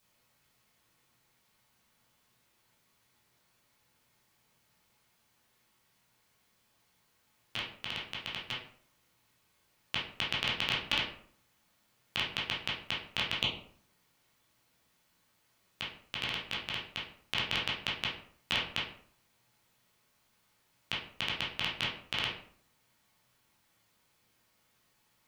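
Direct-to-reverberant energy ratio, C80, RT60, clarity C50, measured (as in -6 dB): -6.5 dB, 10.0 dB, 0.55 s, 4.5 dB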